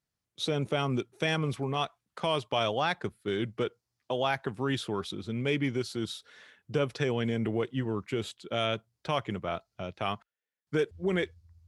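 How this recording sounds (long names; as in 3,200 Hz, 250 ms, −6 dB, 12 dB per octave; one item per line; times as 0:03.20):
background noise floor −88 dBFS
spectral slope −4.0 dB per octave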